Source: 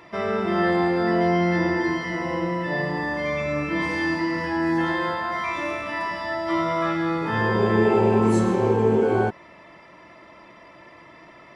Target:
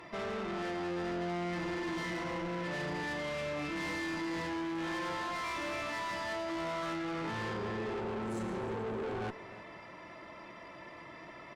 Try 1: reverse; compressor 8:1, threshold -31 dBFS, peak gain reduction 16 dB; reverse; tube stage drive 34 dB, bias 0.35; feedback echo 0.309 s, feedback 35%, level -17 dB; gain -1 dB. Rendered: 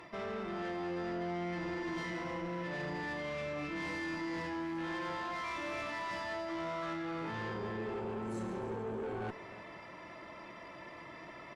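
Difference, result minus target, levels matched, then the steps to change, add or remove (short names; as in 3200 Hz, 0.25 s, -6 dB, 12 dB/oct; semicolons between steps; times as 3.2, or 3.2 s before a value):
compressor: peak gain reduction +5.5 dB
change: compressor 8:1, threshold -24.5 dBFS, peak gain reduction 10.5 dB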